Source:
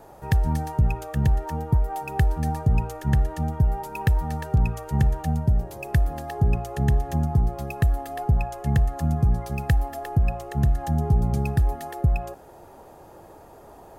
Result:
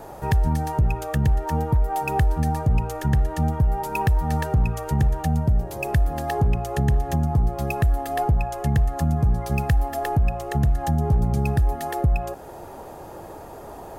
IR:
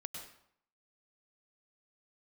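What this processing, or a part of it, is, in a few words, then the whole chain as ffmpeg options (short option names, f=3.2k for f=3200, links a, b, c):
clipper into limiter: -af "asoftclip=type=hard:threshold=-13dB,alimiter=limit=-20.5dB:level=0:latency=1:release=304,volume=8dB"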